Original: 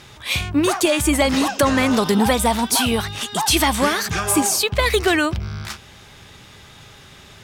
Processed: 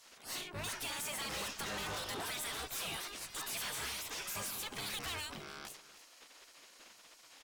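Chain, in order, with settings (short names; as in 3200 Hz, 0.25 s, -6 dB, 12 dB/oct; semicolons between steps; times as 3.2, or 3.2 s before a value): spectral gate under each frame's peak -15 dB weak; tube stage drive 32 dB, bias 0.5; echo 0.293 s -16 dB; gain -6 dB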